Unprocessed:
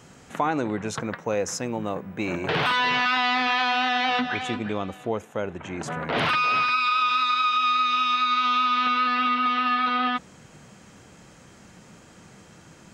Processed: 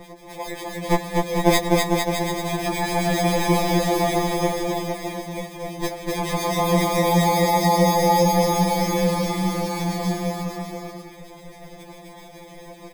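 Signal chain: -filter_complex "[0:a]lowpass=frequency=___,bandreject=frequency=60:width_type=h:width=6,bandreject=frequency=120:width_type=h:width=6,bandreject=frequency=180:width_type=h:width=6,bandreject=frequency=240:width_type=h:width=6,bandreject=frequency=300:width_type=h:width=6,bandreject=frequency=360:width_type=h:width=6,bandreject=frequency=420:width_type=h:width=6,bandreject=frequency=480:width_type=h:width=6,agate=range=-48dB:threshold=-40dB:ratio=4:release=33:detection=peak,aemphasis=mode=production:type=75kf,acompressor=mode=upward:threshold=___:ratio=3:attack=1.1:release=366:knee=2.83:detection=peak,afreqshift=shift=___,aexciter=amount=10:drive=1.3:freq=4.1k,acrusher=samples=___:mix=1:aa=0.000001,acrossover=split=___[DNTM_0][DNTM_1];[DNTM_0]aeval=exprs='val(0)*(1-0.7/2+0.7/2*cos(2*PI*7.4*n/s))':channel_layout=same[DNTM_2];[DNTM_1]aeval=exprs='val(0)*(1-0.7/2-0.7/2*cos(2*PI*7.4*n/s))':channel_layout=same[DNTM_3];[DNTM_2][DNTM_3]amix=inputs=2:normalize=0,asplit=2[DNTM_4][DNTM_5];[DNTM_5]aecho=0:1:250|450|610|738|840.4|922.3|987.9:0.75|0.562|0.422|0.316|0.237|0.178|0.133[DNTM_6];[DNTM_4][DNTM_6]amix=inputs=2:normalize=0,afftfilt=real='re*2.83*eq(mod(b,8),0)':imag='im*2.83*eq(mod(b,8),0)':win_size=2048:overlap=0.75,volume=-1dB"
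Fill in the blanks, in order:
6.1k, -25dB, -19, 31, 1900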